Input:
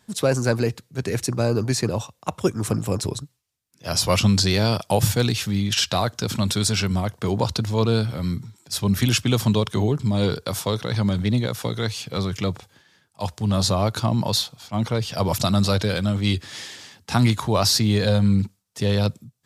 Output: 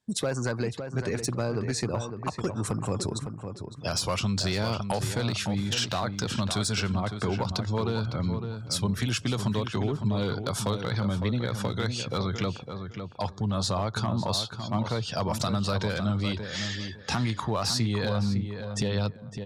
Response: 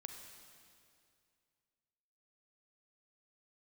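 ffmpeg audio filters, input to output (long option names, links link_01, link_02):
-filter_complex "[0:a]lowpass=frequency=11000:width=0.5412,lowpass=frequency=11000:width=1.3066,afftdn=noise_reduction=26:noise_floor=-42,adynamicequalizer=threshold=0.0141:dfrequency=1300:dqfactor=1.2:tfrequency=1300:tqfactor=1.2:attack=5:release=100:ratio=0.375:range=2.5:mode=boostabove:tftype=bell,asplit=2[link_01][link_02];[link_02]alimiter=limit=-12.5dB:level=0:latency=1:release=138,volume=-1dB[link_03];[link_01][link_03]amix=inputs=2:normalize=0,acompressor=threshold=-31dB:ratio=3,asoftclip=type=hard:threshold=-21dB,asplit=2[link_04][link_05];[link_05]adelay=557,lowpass=frequency=2400:poles=1,volume=-7.5dB,asplit=2[link_06][link_07];[link_07]adelay=557,lowpass=frequency=2400:poles=1,volume=0.23,asplit=2[link_08][link_09];[link_09]adelay=557,lowpass=frequency=2400:poles=1,volume=0.23[link_10];[link_06][link_08][link_10]amix=inputs=3:normalize=0[link_11];[link_04][link_11]amix=inputs=2:normalize=0,volume=1dB"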